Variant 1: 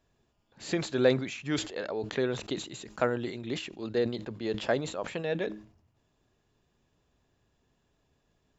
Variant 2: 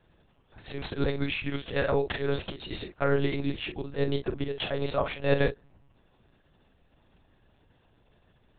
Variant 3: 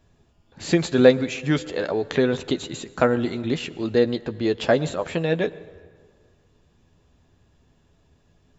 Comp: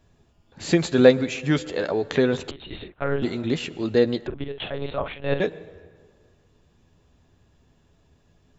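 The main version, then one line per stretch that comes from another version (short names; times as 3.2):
3
2.51–3.22 from 2
4.27–5.4 from 2
not used: 1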